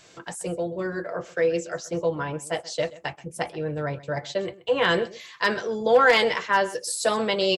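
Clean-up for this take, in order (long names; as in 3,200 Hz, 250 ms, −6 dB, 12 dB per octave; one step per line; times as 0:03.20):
clipped peaks rebuilt −9.5 dBFS
echo removal 129 ms −19 dB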